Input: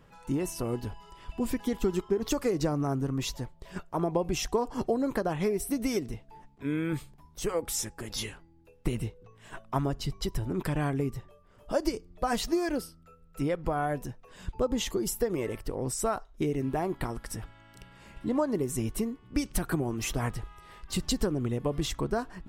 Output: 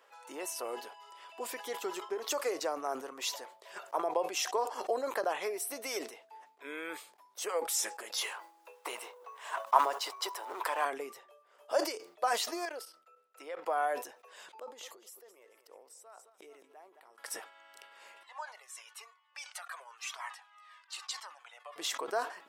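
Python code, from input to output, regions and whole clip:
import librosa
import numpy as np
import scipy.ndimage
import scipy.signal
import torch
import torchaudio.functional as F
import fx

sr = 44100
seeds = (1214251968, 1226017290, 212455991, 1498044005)

y = fx.chain(x, sr, fx.law_mismatch(coded='mu'),
    fx.highpass(hz=390.0, slope=12),
    fx.peak_eq(hz=1000.0, db=10.0, octaves=0.66), at=(8.21, 10.85))
y = fx.chain(y, sr, fx.highpass(hz=340.0, slope=6),
    fx.high_shelf(hz=5700.0, db=-6.0),
    fx.level_steps(step_db=12), at=(12.65, 13.66))
y = fx.chain(y, sr, fx.gate_flip(shuts_db=-27.0, range_db=-26),
    fx.echo_feedback(ms=217, feedback_pct=39, wet_db=-14.0),
    fx.sustainer(db_per_s=25.0), at=(14.59, 17.18))
y = fx.chain(y, sr, fx.highpass(hz=900.0, slope=24),
    fx.air_absorb(metres=52.0),
    fx.comb_cascade(direction='falling', hz=1.0), at=(18.23, 21.76))
y = scipy.signal.sosfilt(scipy.signal.butter(4, 510.0, 'highpass', fs=sr, output='sos'), y)
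y = fx.sustainer(y, sr, db_per_s=120.0)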